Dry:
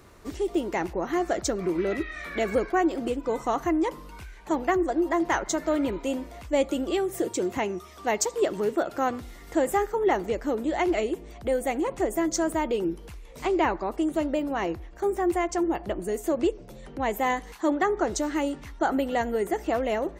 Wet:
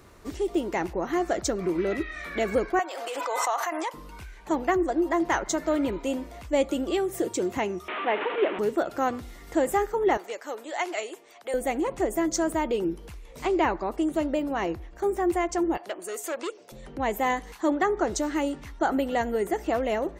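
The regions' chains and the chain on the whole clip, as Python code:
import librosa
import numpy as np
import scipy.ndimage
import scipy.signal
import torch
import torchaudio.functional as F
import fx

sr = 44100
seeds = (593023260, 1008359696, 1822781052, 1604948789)

y = fx.chain(x, sr, fx.highpass(hz=640.0, slope=24),
    fx.pre_swell(db_per_s=21.0), at=(2.79, 3.94))
y = fx.chain(y, sr, fx.delta_mod(bps=16000, step_db=-24.5),
    fx.highpass(hz=260.0, slope=24), at=(7.88, 8.59))
y = fx.chain(y, sr, fx.highpass(hz=710.0, slope=12),
    fx.dynamic_eq(hz=7400.0, q=1.3, threshold_db=-55.0, ratio=4.0, max_db=5), at=(10.17, 11.54))
y = fx.chain(y, sr, fx.highpass(hz=510.0, slope=12),
    fx.peak_eq(hz=6700.0, db=6.0, octaves=2.6),
    fx.transformer_sat(knee_hz=1300.0), at=(15.77, 16.72))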